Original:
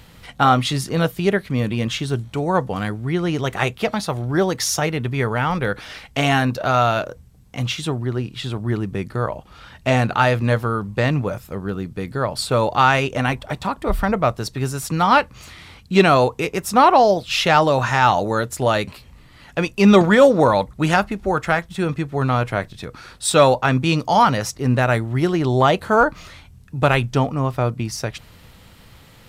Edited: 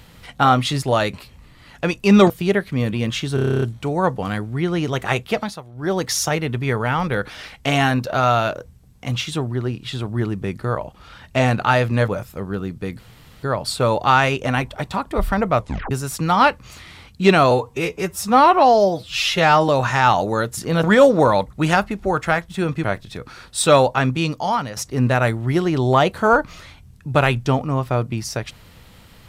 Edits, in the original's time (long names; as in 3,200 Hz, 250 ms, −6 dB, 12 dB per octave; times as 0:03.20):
0:00.82–0:01.08: swap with 0:18.56–0:20.04
0:02.13: stutter 0.03 s, 10 plays
0:03.87–0:04.51: duck −16.5 dB, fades 0.27 s
0:10.59–0:11.23: remove
0:12.14: splice in room tone 0.44 s
0:14.30: tape stop 0.32 s
0:16.22–0:17.67: time-stretch 1.5×
0:22.04–0:22.51: remove
0:23.59–0:24.44: fade out, to −11 dB